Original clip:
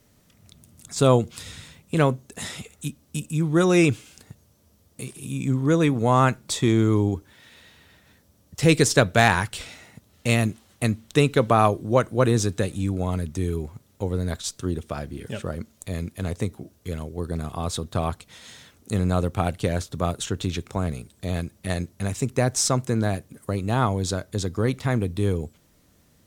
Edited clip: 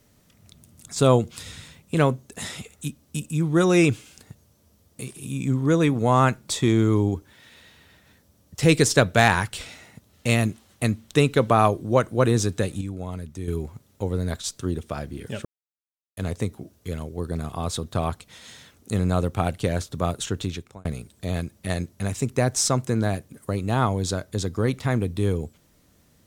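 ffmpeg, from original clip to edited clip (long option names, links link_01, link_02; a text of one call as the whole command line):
ffmpeg -i in.wav -filter_complex "[0:a]asplit=6[link_01][link_02][link_03][link_04][link_05][link_06];[link_01]atrim=end=12.812[link_07];[link_02]atrim=start=12.808:end=13.482,asetpts=PTS-STARTPTS,volume=-7dB[link_08];[link_03]atrim=start=13.478:end=15.45,asetpts=PTS-STARTPTS,afade=type=out:start_time=1.968:duration=0.004:curve=hsin[link_09];[link_04]atrim=start=15.45:end=16.17,asetpts=PTS-STARTPTS,volume=0[link_10];[link_05]atrim=start=16.17:end=20.85,asetpts=PTS-STARTPTS,afade=type=in:duration=0.004:curve=hsin,afade=type=out:start_time=4.21:duration=0.47[link_11];[link_06]atrim=start=20.85,asetpts=PTS-STARTPTS,afade=type=in:duration=0.004:curve=hsin[link_12];[link_07][link_08]acrossfade=duration=0.004:curve1=hsin:curve2=hsin[link_13];[link_09][link_10][link_11][link_12]concat=n=4:v=0:a=1[link_14];[link_13][link_14]acrossfade=duration=0.004:curve1=hsin:curve2=hsin" out.wav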